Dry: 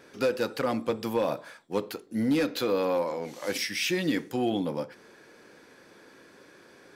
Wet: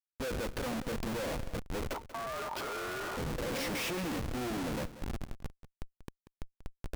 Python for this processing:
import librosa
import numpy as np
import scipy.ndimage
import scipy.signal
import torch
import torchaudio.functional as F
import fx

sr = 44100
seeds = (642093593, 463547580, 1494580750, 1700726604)

p1 = fx.recorder_agc(x, sr, target_db=-22.5, rise_db_per_s=5.8, max_gain_db=30)
p2 = fx.echo_split(p1, sr, split_hz=1200.0, low_ms=658, high_ms=303, feedback_pct=52, wet_db=-12)
p3 = fx.schmitt(p2, sr, flips_db=-32.0)
p4 = fx.ring_mod(p3, sr, carrier_hz=910.0, at=(1.93, 3.16), fade=0.02)
p5 = p4 + fx.echo_single(p4, sr, ms=187, db=-14.5, dry=0)
y = F.gain(torch.from_numpy(p5), -5.0).numpy()